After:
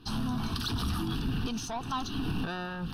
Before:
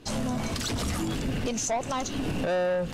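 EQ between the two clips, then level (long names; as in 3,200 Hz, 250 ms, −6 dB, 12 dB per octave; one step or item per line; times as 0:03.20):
phaser with its sweep stopped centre 2,100 Hz, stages 6
0.0 dB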